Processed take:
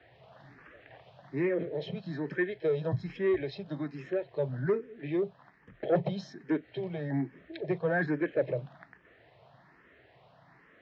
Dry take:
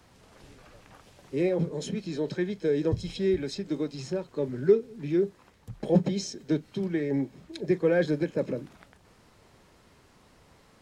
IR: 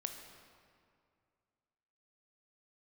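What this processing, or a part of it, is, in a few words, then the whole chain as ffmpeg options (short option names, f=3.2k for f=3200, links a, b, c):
barber-pole phaser into a guitar amplifier: -filter_complex "[0:a]asplit=2[a][b];[b]afreqshift=1.2[c];[a][c]amix=inputs=2:normalize=1,asoftclip=type=tanh:threshold=-19.5dB,highpass=87,equalizer=f=89:t=q:w=4:g=-7,equalizer=f=130:t=q:w=4:g=7,equalizer=f=220:t=q:w=4:g=-7,equalizer=f=670:t=q:w=4:g=9,equalizer=f=1.8k:t=q:w=4:g=10,lowpass=f=3.6k:w=0.5412,lowpass=f=3.6k:w=1.3066"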